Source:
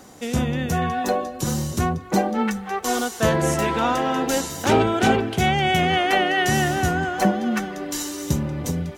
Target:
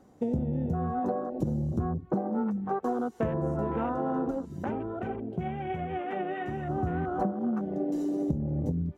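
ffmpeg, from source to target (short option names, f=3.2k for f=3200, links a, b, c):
-filter_complex "[0:a]afwtdn=0.0562,tiltshelf=f=1.3k:g=8.5,acompressor=threshold=-25dB:ratio=12,asplit=3[a][b][c];[a]afade=t=out:st=4.3:d=0.02[d];[b]flanger=delay=1.3:depth=4.6:regen=42:speed=1.2:shape=triangular,afade=t=in:st=4.3:d=0.02,afade=t=out:st=6.68:d=0.02[e];[c]afade=t=in:st=6.68:d=0.02[f];[d][e][f]amix=inputs=3:normalize=0,volume=-1dB"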